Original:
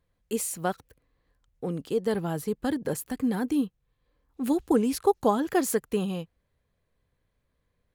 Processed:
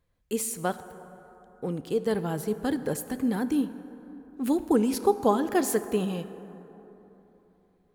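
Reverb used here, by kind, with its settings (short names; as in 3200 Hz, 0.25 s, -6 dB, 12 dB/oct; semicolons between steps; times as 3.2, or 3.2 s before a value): plate-style reverb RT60 3.5 s, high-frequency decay 0.4×, DRR 11.5 dB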